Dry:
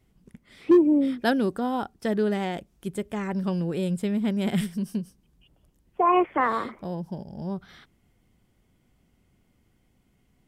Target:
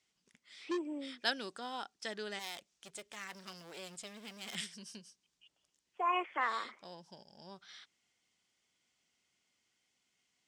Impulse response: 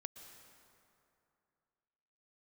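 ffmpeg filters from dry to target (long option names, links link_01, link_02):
-filter_complex "[0:a]lowpass=frequency=6700:width=0.5412,lowpass=frequency=6700:width=1.3066,asettb=1/sr,asplit=3[link_01][link_02][link_03];[link_01]atrim=end=2.394[link_04];[link_02]atrim=start=2.39:end=4.55,asetpts=PTS-STARTPTS,afade=type=in:duration=0.004:curve=qsin,afade=type=out:start_time=2.156:duration=0.004:curve=qsin,aeval=exprs='clip(val(0),-1,0.0158)':channel_layout=same[link_05];[link_03]atrim=start=4.546[link_06];[link_04][link_05]acrossfade=duration=0.004:curve1=hsin:curve2=qsin[link_07];[link_07][link_06]acrossfade=duration=0.004:curve1=qsin:curve2=hsin,aderivative,volume=6dB"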